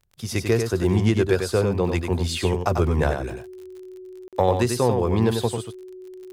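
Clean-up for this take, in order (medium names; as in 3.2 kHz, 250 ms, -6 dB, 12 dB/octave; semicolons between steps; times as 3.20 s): de-click; band-stop 370 Hz, Q 30; interpolate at 4.28 s, 47 ms; inverse comb 95 ms -6 dB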